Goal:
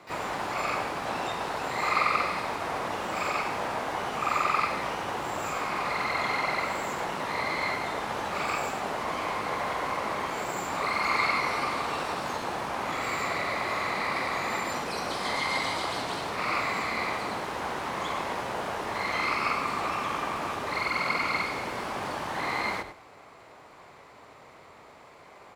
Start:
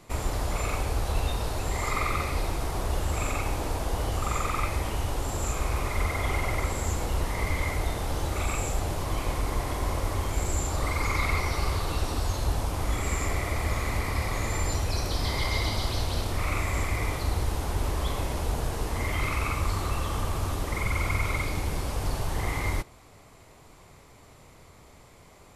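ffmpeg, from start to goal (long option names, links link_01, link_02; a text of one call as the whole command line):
ffmpeg -i in.wav -filter_complex "[0:a]aecho=1:1:102|204:0.251|0.0402,acrossover=split=610|960[link_01][link_02][link_03];[link_01]aeval=exprs='0.0282*(abs(mod(val(0)/0.0282+3,4)-2)-1)':channel_layout=same[link_04];[link_04][link_02][link_03]amix=inputs=3:normalize=0,bandpass=frequency=1000:width_type=q:width=0.62:csg=0,asplit=2[link_05][link_06];[link_06]asetrate=88200,aresample=44100,atempo=0.5,volume=-10dB[link_07];[link_05][link_07]amix=inputs=2:normalize=0,volume=6dB" out.wav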